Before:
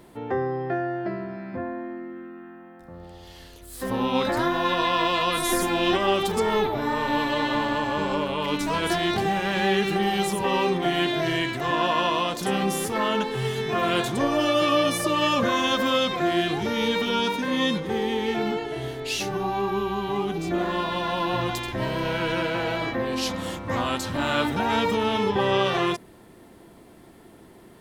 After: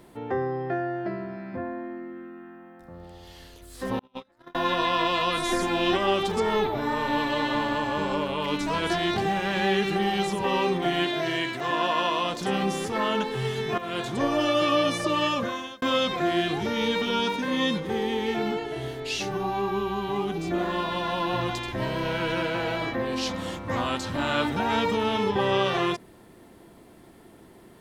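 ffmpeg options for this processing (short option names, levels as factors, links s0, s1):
-filter_complex "[0:a]asettb=1/sr,asplit=3[s0][s1][s2];[s0]atrim=end=3.994[s3];[s1]atrim=start=3.99:end=4.55,asetpts=PTS-STARTPTS,afade=t=in:d=0.004:c=qsin,afade=t=out:st=0.556:d=0.004:c=qsin,agate=range=0.00891:threshold=0.1:ratio=16:release=100:detection=peak[s4];[s2]atrim=start=4.546[s5];[s3][s4]acrossfade=d=0.004:c1=hsin:c2=qsin[s6];[s6][s5]acrossfade=d=0.004:c1=qsin:c2=hsin,asettb=1/sr,asplit=3[s7][s8][s9];[s7]atrim=end=11.044[s10];[s8]atrim=start=11.04:end=12.24,asetpts=PTS-STARTPTS,afade=t=in:d=0.004:c=qsin,afade=t=out:st=1.196:d=0.004:c=qsin,lowshelf=f=140:g=-11[s11];[s9]atrim=start=12.236[s12];[s10][s11]acrossfade=d=0.004:c1=hsin:c2=qsin[s13];[s13][s12]acrossfade=d=0.004:c1=qsin:c2=hsin,asplit=3[s14][s15][s16];[s14]atrim=end=13.78,asetpts=PTS-STARTPTS,afade=t=out:st=13.776:d=0.004:c=hsin:silence=0.237137[s17];[s15]atrim=start=13.78:end=15.82,asetpts=PTS-STARTPTS,afade=t=in:d=0.46:silence=0.237137,afade=t=out:st=1.4:d=0.64[s18];[s16]atrim=start=15.82,asetpts=PTS-STARTPTS,afade=t=in:d=0.004:c=hsin[s19];[s17][s18][s19]concat=n=3:v=0:a=1,acrossover=split=7900[s20][s21];[s21]acompressor=threshold=0.002:ratio=4:attack=1:release=60[s22];[s20][s22]amix=inputs=2:normalize=0,volume=0.841"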